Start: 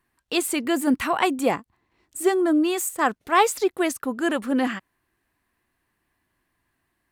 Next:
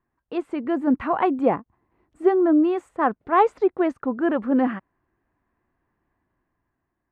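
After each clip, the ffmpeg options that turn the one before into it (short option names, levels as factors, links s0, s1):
-af "lowpass=1200,dynaudnorm=f=160:g=11:m=1.78,volume=0.794"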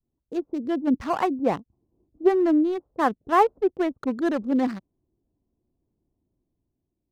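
-filter_complex "[0:a]adynamicequalizer=threshold=0.0355:dfrequency=370:dqfactor=0.78:tfrequency=370:tqfactor=0.78:attack=5:release=100:ratio=0.375:range=2:mode=cutabove:tftype=bell,acrossover=split=580[s0][s1];[s1]aeval=exprs='sgn(val(0))*max(abs(val(0))-0.0168,0)':c=same[s2];[s0][s2]amix=inputs=2:normalize=0"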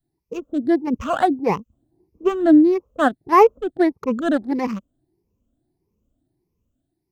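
-af "afftfilt=real='re*pow(10,15/40*sin(2*PI*(0.81*log(max(b,1)*sr/1024/100)/log(2)-(1.6)*(pts-256)/sr)))':imag='im*pow(10,15/40*sin(2*PI*(0.81*log(max(b,1)*sr/1024/100)/log(2)-(1.6)*(pts-256)/sr)))':win_size=1024:overlap=0.75,volume=1.33"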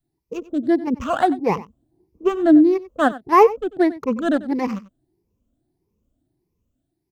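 -af "aecho=1:1:93:0.133"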